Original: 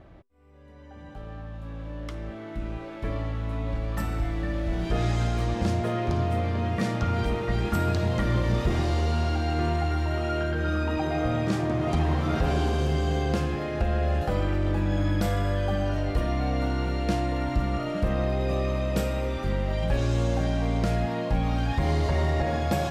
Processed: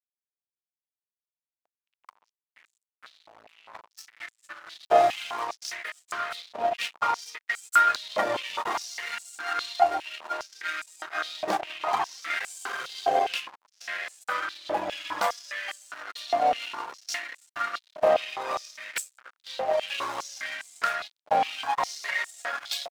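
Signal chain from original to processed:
noise gate −26 dBFS, range −8 dB
reverb reduction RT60 1.3 s
slack as between gear wheels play −33 dBFS
high-pass on a step sequencer 4.9 Hz 690–7,800 Hz
level +7.5 dB

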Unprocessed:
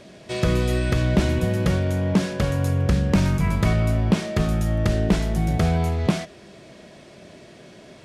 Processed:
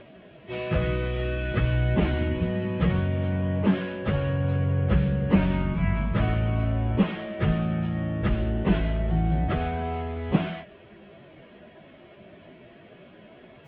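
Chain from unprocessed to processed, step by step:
elliptic low-pass filter 3,100 Hz, stop band 70 dB
time stretch by phase vocoder 1.7×

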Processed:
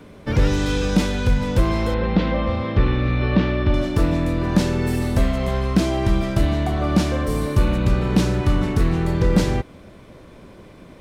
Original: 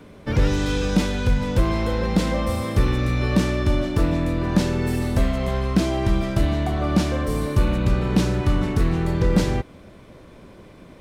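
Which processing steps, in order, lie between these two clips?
0:01.94–0:03.74: low-pass filter 3,700 Hz 24 dB per octave
level +1.5 dB

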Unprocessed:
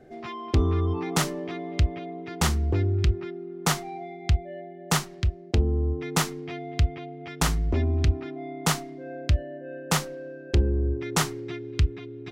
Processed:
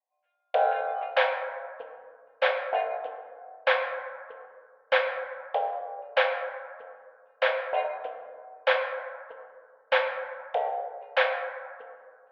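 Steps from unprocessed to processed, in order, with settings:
single-sideband voice off tune +360 Hz 160–2,900 Hz
noise gate −28 dBFS, range −44 dB
notch filter 1,200 Hz, Q 6.6
dense smooth reverb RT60 2 s, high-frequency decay 0.35×, DRR 2.5 dB
level +3 dB

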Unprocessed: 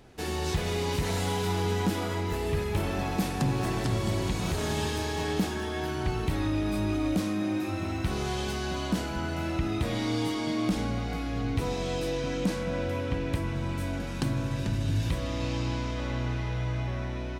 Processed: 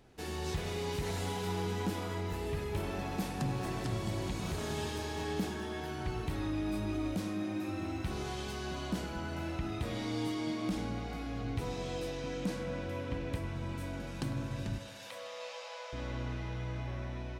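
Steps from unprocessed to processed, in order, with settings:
0:14.78–0:15.93: linear-phase brick-wall high-pass 450 Hz
tape delay 101 ms, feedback 74%, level −10 dB
level −7.5 dB

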